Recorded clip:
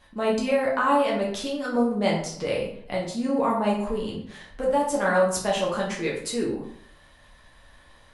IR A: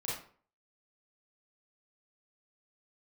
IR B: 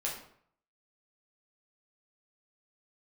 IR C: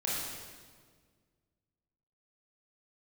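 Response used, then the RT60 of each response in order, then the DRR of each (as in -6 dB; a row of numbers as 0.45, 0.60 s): B; 0.45, 0.60, 1.7 s; -7.5, -4.0, -6.5 dB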